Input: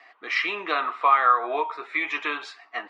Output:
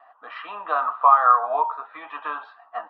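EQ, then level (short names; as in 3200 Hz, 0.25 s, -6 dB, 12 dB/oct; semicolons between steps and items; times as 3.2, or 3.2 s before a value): BPF 390–2900 Hz; air absorption 490 m; fixed phaser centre 900 Hz, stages 4; +8.0 dB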